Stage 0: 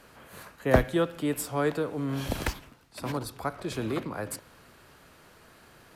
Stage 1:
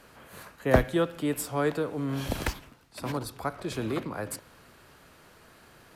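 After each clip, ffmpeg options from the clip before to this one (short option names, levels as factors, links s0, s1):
-af anull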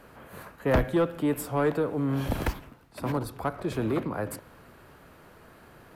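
-af "equalizer=f=5900:w=0.42:g=-10.5,asoftclip=type=tanh:threshold=0.0891,volume=1.68"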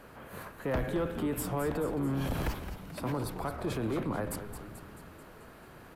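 -filter_complex "[0:a]alimiter=level_in=1.19:limit=0.0631:level=0:latency=1:release=21,volume=0.841,asplit=2[s0][s1];[s1]asplit=7[s2][s3][s4][s5][s6][s7][s8];[s2]adelay=218,afreqshift=-110,volume=0.316[s9];[s3]adelay=436,afreqshift=-220,volume=0.191[s10];[s4]adelay=654,afreqshift=-330,volume=0.114[s11];[s5]adelay=872,afreqshift=-440,volume=0.0684[s12];[s6]adelay=1090,afreqshift=-550,volume=0.0412[s13];[s7]adelay=1308,afreqshift=-660,volume=0.0245[s14];[s8]adelay=1526,afreqshift=-770,volume=0.0148[s15];[s9][s10][s11][s12][s13][s14][s15]amix=inputs=7:normalize=0[s16];[s0][s16]amix=inputs=2:normalize=0"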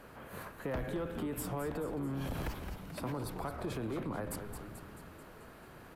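-af "acompressor=threshold=0.02:ratio=2.5,volume=0.841"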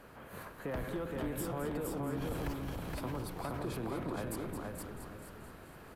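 -af "aecho=1:1:469|938|1407|1876:0.708|0.205|0.0595|0.0173,volume=0.841"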